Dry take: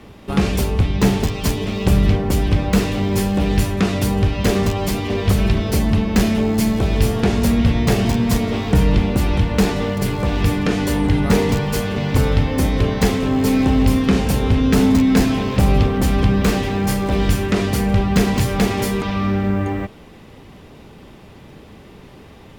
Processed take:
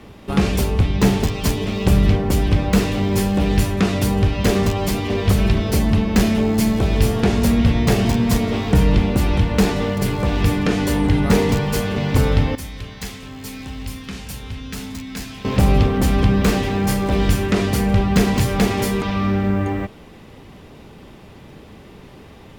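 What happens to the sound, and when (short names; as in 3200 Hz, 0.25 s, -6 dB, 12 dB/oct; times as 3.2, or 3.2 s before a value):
12.55–15.45 passive tone stack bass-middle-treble 5-5-5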